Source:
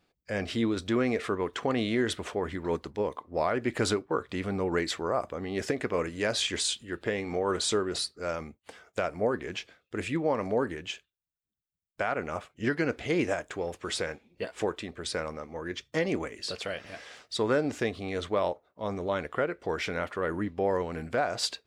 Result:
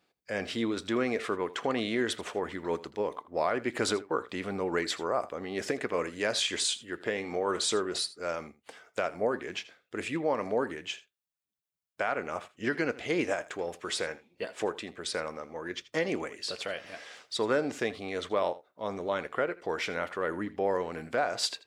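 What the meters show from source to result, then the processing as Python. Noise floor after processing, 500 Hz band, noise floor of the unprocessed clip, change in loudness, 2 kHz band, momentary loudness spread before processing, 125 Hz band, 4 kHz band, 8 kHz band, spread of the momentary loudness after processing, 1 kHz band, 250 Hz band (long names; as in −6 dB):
−82 dBFS, −1.5 dB, −84 dBFS, −1.0 dB, 0.0 dB, 9 LU, −7.0 dB, 0.0 dB, 0.0 dB, 9 LU, −0.5 dB, −3.0 dB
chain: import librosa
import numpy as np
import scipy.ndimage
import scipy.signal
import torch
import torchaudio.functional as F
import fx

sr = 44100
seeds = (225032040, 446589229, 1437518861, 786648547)

p1 = fx.highpass(x, sr, hz=280.0, slope=6)
y = p1 + fx.echo_single(p1, sr, ms=81, db=-18.0, dry=0)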